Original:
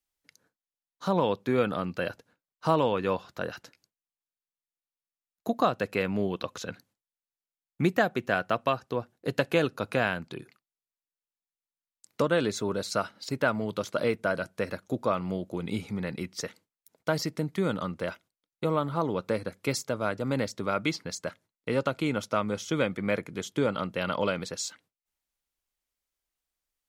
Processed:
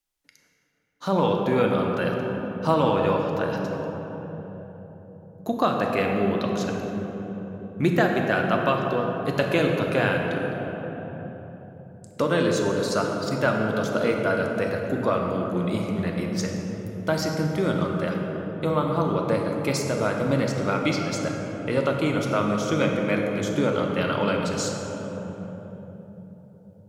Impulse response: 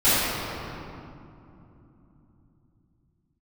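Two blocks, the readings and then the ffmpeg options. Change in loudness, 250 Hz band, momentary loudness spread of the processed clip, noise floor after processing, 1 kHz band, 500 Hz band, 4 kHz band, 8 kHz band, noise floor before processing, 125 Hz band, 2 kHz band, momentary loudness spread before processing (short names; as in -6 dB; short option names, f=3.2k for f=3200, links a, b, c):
+5.0 dB, +6.5 dB, 14 LU, -48 dBFS, +5.0 dB, +5.5 dB, +3.5 dB, +3.5 dB, under -85 dBFS, +7.5 dB, +4.5 dB, 10 LU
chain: -filter_complex "[0:a]asplit=2[a][b];[1:a]atrim=start_sample=2205,asetrate=27783,aresample=44100[c];[b][c]afir=irnorm=-1:irlink=0,volume=-24dB[d];[a][d]amix=inputs=2:normalize=0,volume=1.5dB"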